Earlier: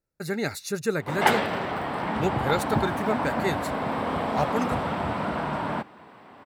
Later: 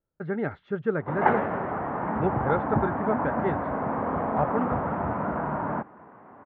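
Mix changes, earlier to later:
speech: remove Butterworth band-reject 3,200 Hz, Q 3.2
master: add low-pass filter 1,600 Hz 24 dB per octave

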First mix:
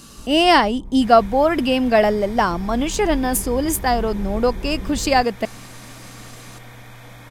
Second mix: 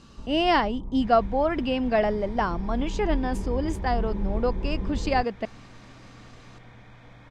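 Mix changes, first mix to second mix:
speech −7.0 dB
second sound −8.5 dB
master: add high-frequency loss of the air 140 metres

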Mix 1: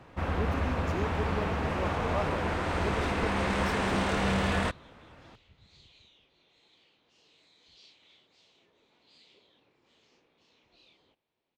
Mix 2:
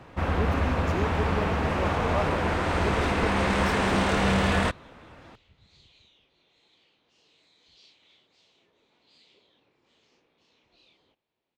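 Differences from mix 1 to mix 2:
speech +3.5 dB
first sound +4.5 dB

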